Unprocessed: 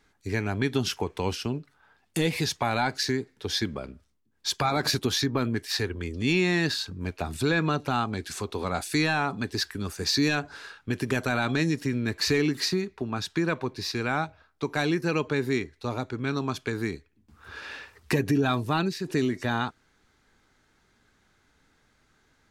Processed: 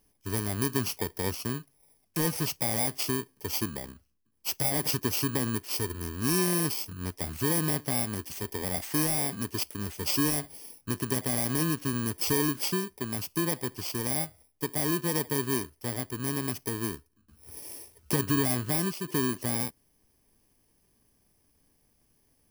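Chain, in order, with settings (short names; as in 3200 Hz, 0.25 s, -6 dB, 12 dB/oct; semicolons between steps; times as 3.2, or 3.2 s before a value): FFT order left unsorted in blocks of 32 samples; gain -2.5 dB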